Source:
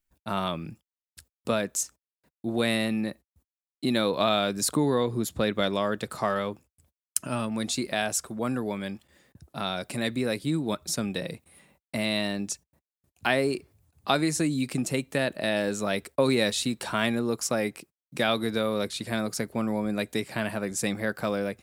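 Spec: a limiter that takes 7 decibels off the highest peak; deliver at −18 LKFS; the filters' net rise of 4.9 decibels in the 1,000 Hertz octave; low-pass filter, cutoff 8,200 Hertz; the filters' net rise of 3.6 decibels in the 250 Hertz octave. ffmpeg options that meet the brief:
ffmpeg -i in.wav -af "lowpass=8200,equalizer=frequency=250:width_type=o:gain=4,equalizer=frequency=1000:width_type=o:gain=6.5,volume=8.5dB,alimiter=limit=-4dB:level=0:latency=1" out.wav

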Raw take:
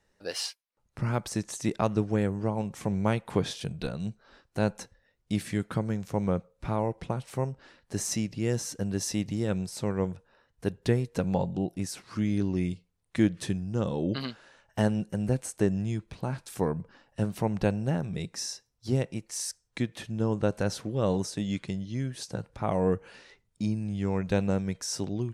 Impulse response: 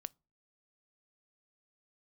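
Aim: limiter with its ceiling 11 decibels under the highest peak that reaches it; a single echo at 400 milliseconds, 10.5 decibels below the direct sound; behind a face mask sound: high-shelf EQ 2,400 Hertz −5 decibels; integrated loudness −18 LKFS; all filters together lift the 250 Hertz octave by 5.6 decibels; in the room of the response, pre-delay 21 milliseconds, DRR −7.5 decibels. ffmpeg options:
-filter_complex "[0:a]equalizer=frequency=250:width_type=o:gain=7.5,alimiter=limit=-18.5dB:level=0:latency=1,aecho=1:1:400:0.299,asplit=2[link_01][link_02];[1:a]atrim=start_sample=2205,adelay=21[link_03];[link_02][link_03]afir=irnorm=-1:irlink=0,volume=11.5dB[link_04];[link_01][link_04]amix=inputs=2:normalize=0,highshelf=frequency=2400:gain=-5,volume=4dB"

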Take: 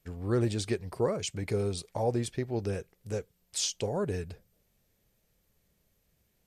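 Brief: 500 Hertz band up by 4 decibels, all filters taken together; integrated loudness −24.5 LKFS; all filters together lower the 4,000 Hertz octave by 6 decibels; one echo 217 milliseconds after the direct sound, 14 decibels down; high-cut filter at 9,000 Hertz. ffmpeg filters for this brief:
ffmpeg -i in.wav -af "lowpass=9000,equalizer=frequency=500:width_type=o:gain=5,equalizer=frequency=4000:width_type=o:gain=-8,aecho=1:1:217:0.2,volume=6dB" out.wav

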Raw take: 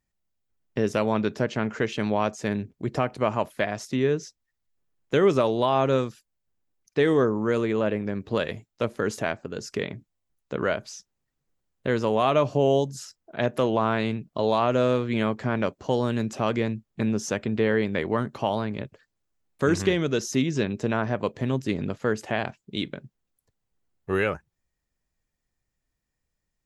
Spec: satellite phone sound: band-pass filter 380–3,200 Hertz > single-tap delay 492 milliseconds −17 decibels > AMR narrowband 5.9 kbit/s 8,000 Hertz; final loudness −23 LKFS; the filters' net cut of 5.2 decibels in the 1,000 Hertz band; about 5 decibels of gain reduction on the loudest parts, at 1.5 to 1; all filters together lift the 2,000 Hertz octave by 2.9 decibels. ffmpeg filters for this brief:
ffmpeg -i in.wav -af "equalizer=frequency=1000:width_type=o:gain=-9,equalizer=frequency=2000:width_type=o:gain=7.5,acompressor=threshold=-31dB:ratio=1.5,highpass=380,lowpass=3200,aecho=1:1:492:0.141,volume=11.5dB" -ar 8000 -c:a libopencore_amrnb -b:a 5900 out.amr

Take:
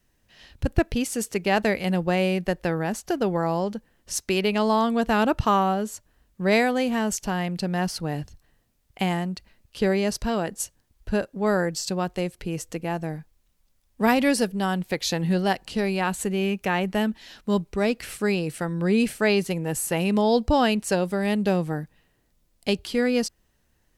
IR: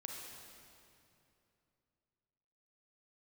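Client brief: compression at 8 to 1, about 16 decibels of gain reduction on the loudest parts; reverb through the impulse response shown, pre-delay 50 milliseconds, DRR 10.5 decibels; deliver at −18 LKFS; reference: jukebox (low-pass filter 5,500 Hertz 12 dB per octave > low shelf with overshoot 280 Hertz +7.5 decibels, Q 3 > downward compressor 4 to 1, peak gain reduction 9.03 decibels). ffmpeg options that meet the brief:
-filter_complex "[0:a]acompressor=threshold=-36dB:ratio=8,asplit=2[link_01][link_02];[1:a]atrim=start_sample=2205,adelay=50[link_03];[link_02][link_03]afir=irnorm=-1:irlink=0,volume=-8.5dB[link_04];[link_01][link_04]amix=inputs=2:normalize=0,lowpass=5500,lowshelf=frequency=280:width_type=q:width=3:gain=7.5,acompressor=threshold=-31dB:ratio=4,volume=18dB"

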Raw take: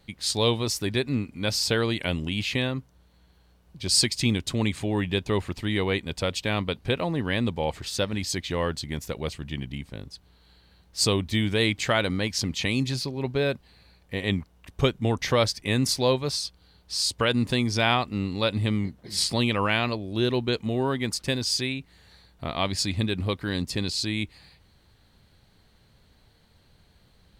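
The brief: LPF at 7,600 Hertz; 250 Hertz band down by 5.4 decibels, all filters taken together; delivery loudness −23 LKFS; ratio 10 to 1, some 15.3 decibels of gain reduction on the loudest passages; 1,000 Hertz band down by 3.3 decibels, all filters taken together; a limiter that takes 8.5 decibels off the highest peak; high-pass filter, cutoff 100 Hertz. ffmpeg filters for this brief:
ffmpeg -i in.wav -af "highpass=100,lowpass=7600,equalizer=frequency=250:width_type=o:gain=-6.5,equalizer=frequency=1000:width_type=o:gain=-4,acompressor=threshold=-35dB:ratio=10,volume=18.5dB,alimiter=limit=-12dB:level=0:latency=1" out.wav

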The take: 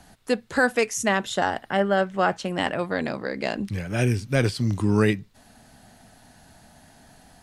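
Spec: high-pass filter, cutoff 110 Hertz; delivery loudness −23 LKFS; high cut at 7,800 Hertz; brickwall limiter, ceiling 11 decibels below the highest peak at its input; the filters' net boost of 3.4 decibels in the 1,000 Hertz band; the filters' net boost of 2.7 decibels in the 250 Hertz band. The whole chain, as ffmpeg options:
ffmpeg -i in.wav -af "highpass=110,lowpass=7800,equalizer=frequency=250:width_type=o:gain=3.5,equalizer=frequency=1000:width_type=o:gain=4.5,volume=5.5dB,alimiter=limit=-11dB:level=0:latency=1" out.wav

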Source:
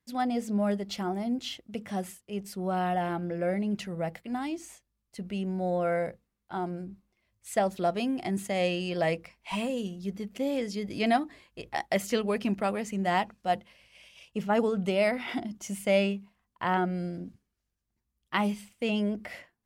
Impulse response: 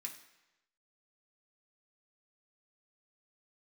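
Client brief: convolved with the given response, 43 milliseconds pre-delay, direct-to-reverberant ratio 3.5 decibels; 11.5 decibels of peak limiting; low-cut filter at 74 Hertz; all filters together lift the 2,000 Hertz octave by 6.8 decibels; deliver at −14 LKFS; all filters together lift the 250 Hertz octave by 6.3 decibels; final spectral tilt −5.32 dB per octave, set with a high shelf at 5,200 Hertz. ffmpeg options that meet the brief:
-filter_complex "[0:a]highpass=74,equalizer=frequency=250:width_type=o:gain=8,equalizer=frequency=2000:width_type=o:gain=7,highshelf=frequency=5200:gain=6.5,alimiter=limit=-19.5dB:level=0:latency=1,asplit=2[link_01][link_02];[1:a]atrim=start_sample=2205,adelay=43[link_03];[link_02][link_03]afir=irnorm=-1:irlink=0,volume=0dB[link_04];[link_01][link_04]amix=inputs=2:normalize=0,volume=14dB"

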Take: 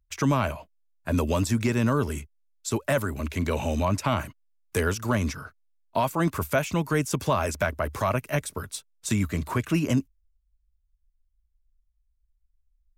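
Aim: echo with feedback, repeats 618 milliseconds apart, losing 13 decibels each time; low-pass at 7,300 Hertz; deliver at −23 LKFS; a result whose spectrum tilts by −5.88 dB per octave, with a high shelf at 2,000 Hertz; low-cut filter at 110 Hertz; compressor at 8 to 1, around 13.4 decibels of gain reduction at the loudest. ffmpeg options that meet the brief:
ffmpeg -i in.wav -af "highpass=110,lowpass=7300,highshelf=frequency=2000:gain=-8,acompressor=threshold=-34dB:ratio=8,aecho=1:1:618|1236|1854:0.224|0.0493|0.0108,volume=16.5dB" out.wav

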